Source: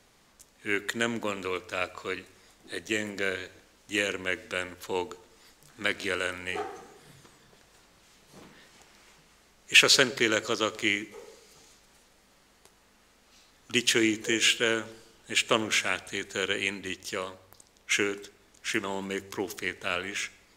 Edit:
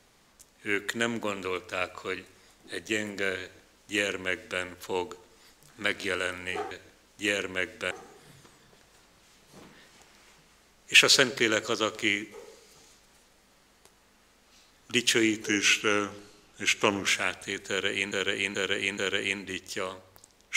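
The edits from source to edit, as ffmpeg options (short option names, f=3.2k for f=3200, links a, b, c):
-filter_complex "[0:a]asplit=8[a][b][c][d][e][f][g][h];[a]atrim=end=6.712[i];[b]atrim=start=3.408:end=4.612[j];[c]atrim=start=6.708:end=14.244[k];[d]atrim=start=14.24:end=15.73,asetpts=PTS-STARTPTS,asetrate=40131,aresample=44100[l];[e]atrim=start=15.726:end=16.772[m];[f]atrim=start=16.338:end=16.772[n];[g]atrim=start=16.338:end=16.772[o];[h]atrim=start=16.338[p];[i][j]acrossfade=d=0.004:c1=hsin:c2=hsin[q];[q][k]acrossfade=d=0.004:c1=hsin:c2=hsin[r];[r][l]acrossfade=d=0.004:c1=hsin:c2=hsin[s];[s][m]acrossfade=d=0.004:c1=hsin:c2=hsin[t];[t][n]acrossfade=d=0.004:c1=hsin:c2=hsin[u];[u][o]acrossfade=d=0.004:c1=hsin:c2=hsin[v];[v][p]acrossfade=d=0.004:c1=hsin:c2=hsin"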